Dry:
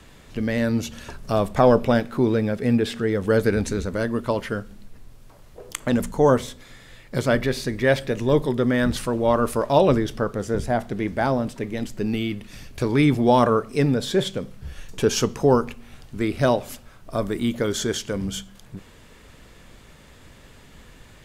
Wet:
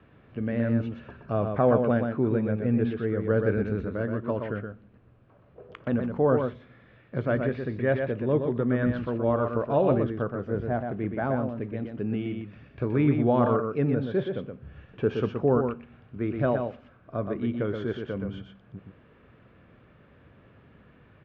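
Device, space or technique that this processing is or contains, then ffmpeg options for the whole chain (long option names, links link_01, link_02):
bass cabinet: -af "highpass=85,equalizer=frequency=110:width_type=q:width=4:gain=5,equalizer=frequency=900:width_type=q:width=4:gain=-6,equalizer=frequency=2000:width_type=q:width=4:gain=-7,lowpass=frequency=2300:width=0.5412,lowpass=frequency=2300:width=1.3066,aecho=1:1:122:0.531,volume=-5.5dB"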